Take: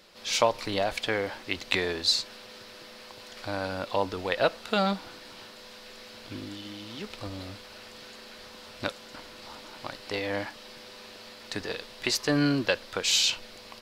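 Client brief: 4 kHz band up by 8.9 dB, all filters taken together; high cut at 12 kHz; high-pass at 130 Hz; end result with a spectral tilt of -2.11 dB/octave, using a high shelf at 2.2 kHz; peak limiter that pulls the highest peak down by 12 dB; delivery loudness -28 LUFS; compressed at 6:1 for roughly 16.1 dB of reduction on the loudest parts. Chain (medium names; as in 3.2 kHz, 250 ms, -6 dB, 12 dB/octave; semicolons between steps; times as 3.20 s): high-pass 130 Hz; low-pass 12 kHz; treble shelf 2.2 kHz +5 dB; peaking EQ 4 kHz +6 dB; compression 6:1, threshold -29 dBFS; trim +7.5 dB; peak limiter -14.5 dBFS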